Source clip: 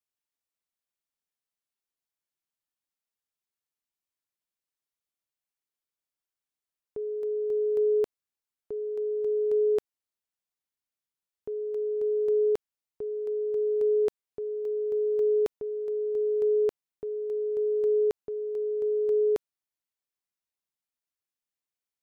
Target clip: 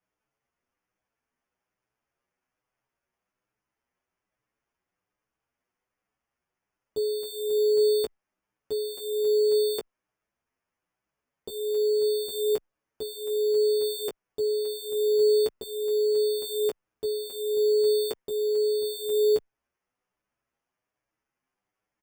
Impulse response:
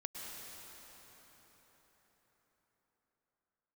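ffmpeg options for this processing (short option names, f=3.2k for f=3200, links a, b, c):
-filter_complex "[0:a]asplit=2[a][b];[b]alimiter=level_in=6dB:limit=-24dB:level=0:latency=1:release=212,volume=-6dB,volume=2dB[c];[a][c]amix=inputs=2:normalize=0,acrusher=samples=11:mix=1:aa=0.000001,asplit=2[d][e];[e]adelay=16,volume=-6.5dB[f];[d][f]amix=inputs=2:normalize=0,asplit=2[g][h];[h]adelay=7.7,afreqshift=1.2[i];[g][i]amix=inputs=2:normalize=1"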